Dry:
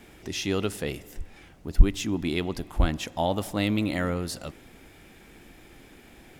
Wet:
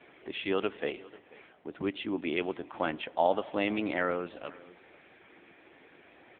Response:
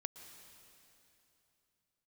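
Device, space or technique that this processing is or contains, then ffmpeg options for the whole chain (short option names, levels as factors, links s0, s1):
satellite phone: -af "highpass=390,lowpass=3100,aecho=1:1:491:0.0891,volume=1.26" -ar 8000 -c:a libopencore_amrnb -b:a 6700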